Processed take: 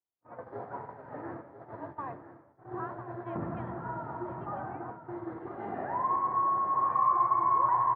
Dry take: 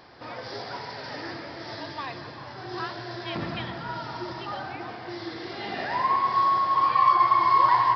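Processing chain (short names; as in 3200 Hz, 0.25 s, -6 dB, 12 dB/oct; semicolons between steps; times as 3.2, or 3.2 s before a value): gate -36 dBFS, range -50 dB; LPF 1300 Hz 24 dB/oct; in parallel at -2 dB: compressor, threshold -31 dBFS, peak gain reduction 14.5 dB; on the sum: echo 1.001 s -11.5 dB; gain -7 dB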